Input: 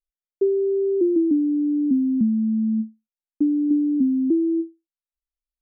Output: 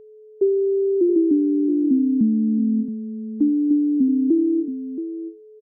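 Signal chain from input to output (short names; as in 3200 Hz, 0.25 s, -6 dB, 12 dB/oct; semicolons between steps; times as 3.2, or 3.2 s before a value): echo 0.675 s -10.5 dB; whine 430 Hz -44 dBFS; gain +1.5 dB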